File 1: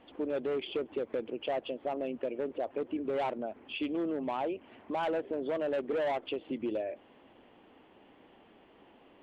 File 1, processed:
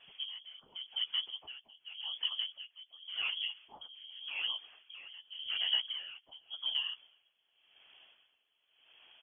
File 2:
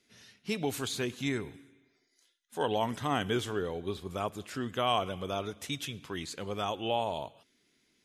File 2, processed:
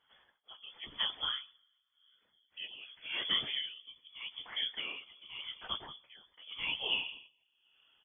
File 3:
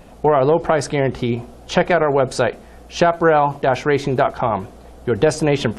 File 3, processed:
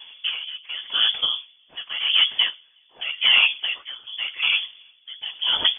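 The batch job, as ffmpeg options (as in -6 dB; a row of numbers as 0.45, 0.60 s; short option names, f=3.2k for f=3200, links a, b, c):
-filter_complex "[0:a]asoftclip=type=hard:threshold=-10.5dB,afftfilt=real='hypot(re,im)*cos(2*PI*random(0))':imag='hypot(re,im)*sin(2*PI*random(1))':win_size=512:overlap=0.75,asplit=2[a][b];[b]adelay=14,volume=-10.5dB[c];[a][c]amix=inputs=2:normalize=0,asplit=2[d][e];[e]adelay=368,lowpass=f=980:p=1,volume=-23.5dB,asplit=2[f][g];[g]adelay=368,lowpass=f=980:p=1,volume=0.44,asplit=2[h][i];[i]adelay=368,lowpass=f=980:p=1,volume=0.44[j];[f][h][j]amix=inputs=3:normalize=0[k];[d][k]amix=inputs=2:normalize=0,lowpass=f=3k:t=q:w=0.5098,lowpass=f=3k:t=q:w=0.6013,lowpass=f=3k:t=q:w=0.9,lowpass=f=3k:t=q:w=2.563,afreqshift=-3500,aeval=exprs='val(0)*pow(10,-20*(0.5-0.5*cos(2*PI*0.88*n/s))/20)':c=same,volume=5.5dB"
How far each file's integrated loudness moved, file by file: -1.5, -3.0, -2.5 LU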